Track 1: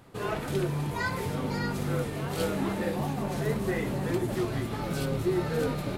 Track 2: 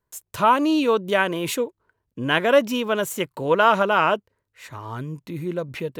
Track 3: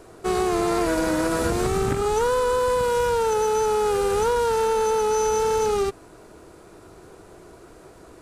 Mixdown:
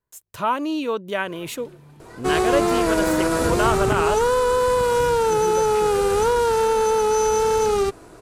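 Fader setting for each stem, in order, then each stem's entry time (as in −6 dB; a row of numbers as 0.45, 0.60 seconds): −17.0, −5.0, +2.5 decibels; 1.10, 0.00, 2.00 seconds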